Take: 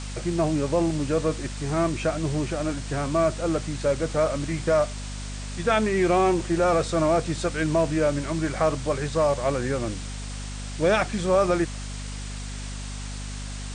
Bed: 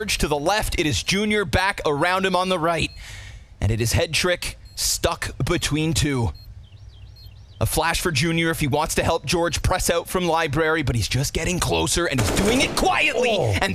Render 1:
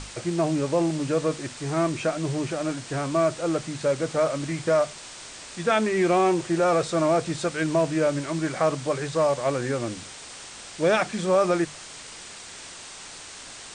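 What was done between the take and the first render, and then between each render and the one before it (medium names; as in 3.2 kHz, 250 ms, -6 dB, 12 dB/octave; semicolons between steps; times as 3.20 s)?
hum notches 50/100/150/200/250 Hz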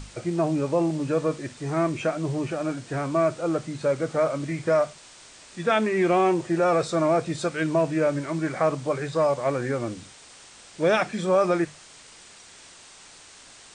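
noise print and reduce 7 dB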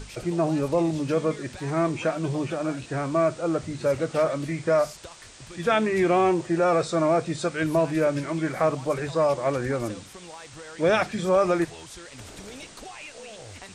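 add bed -23 dB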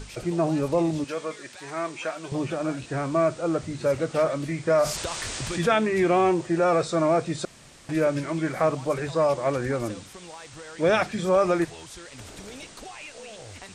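1.04–2.32 s: high-pass 1 kHz 6 dB/octave; 4.70–5.73 s: level flattener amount 50%; 7.45–7.89 s: room tone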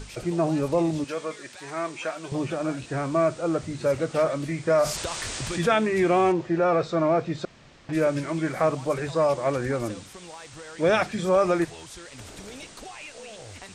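6.32–7.93 s: distance through air 140 m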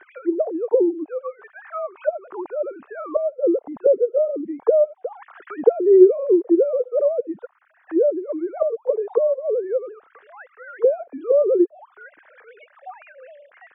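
formants replaced by sine waves; touch-sensitive low-pass 430–1800 Hz down, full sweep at -22.5 dBFS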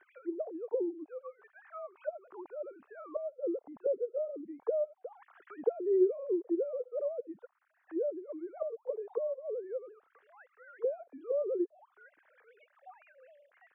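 trim -15.5 dB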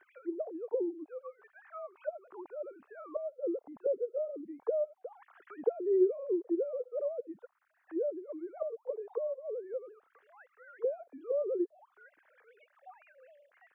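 8.79–9.74 s: Bessel high-pass 290 Hz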